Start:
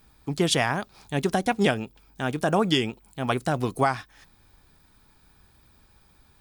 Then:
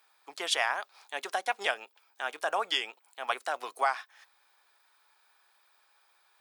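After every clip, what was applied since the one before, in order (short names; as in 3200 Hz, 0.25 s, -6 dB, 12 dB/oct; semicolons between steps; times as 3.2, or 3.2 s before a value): Bessel high-pass 920 Hz, order 4; high shelf 3900 Hz -7.5 dB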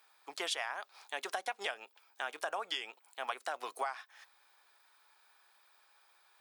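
compressor 5:1, threshold -34 dBFS, peak gain reduction 11.5 dB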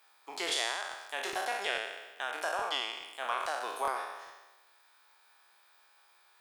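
spectral trails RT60 1.17 s; crackling interface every 0.42 s, samples 1024, repeat, from 0.47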